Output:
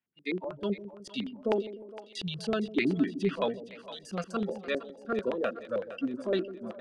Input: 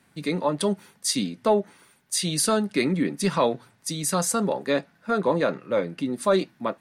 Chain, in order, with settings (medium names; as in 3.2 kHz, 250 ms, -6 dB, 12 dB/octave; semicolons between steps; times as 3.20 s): spectral noise reduction 25 dB; LFO low-pass square 7.9 Hz 370–2900 Hz; two-band feedback delay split 550 Hz, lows 151 ms, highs 462 ms, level -13 dB; trim -7.5 dB